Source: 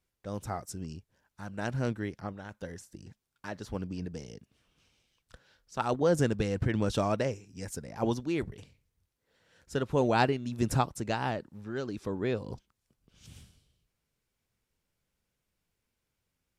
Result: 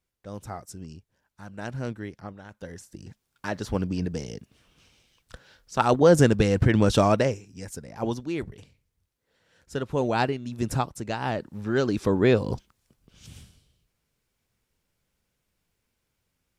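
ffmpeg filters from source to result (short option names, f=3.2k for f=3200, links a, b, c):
-af "volume=19.5dB,afade=t=in:st=2.53:d=0.99:silence=0.316228,afade=t=out:st=7.07:d=0.57:silence=0.398107,afade=t=in:st=11.2:d=0.53:silence=0.298538,afade=t=out:st=12.44:d=0.88:silence=0.473151"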